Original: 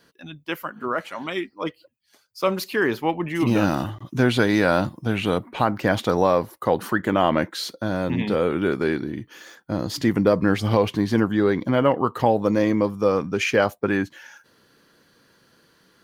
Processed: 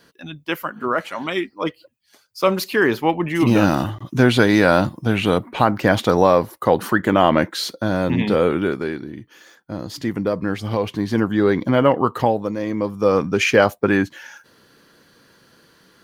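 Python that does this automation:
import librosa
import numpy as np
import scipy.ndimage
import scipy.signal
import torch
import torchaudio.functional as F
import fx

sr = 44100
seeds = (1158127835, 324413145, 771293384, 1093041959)

y = fx.gain(x, sr, db=fx.line((8.49, 4.5), (8.92, -3.5), (10.68, -3.5), (11.52, 3.5), (12.17, 3.5), (12.57, -6.0), (13.18, 5.0)))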